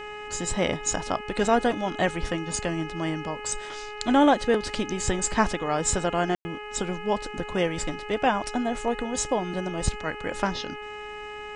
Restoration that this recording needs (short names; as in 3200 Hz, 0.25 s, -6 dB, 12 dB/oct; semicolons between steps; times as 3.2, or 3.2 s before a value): de-hum 419.8 Hz, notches 7; room tone fill 6.35–6.45